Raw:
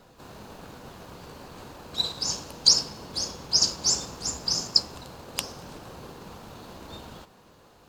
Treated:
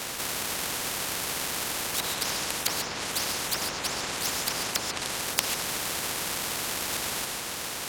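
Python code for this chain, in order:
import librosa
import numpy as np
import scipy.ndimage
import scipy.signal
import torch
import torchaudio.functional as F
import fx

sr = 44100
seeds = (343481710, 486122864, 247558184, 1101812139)

y = fx.halfwave_hold(x, sr)
y = fx.env_lowpass_down(y, sr, base_hz=1200.0, full_db=-18.5)
y = fx.highpass(y, sr, hz=630.0, slope=6)
y = fx.rev_gated(y, sr, seeds[0], gate_ms=160, shape='rising', drr_db=7.0)
y = fx.spectral_comp(y, sr, ratio=4.0)
y = F.gain(torch.from_numpy(y), 2.0).numpy()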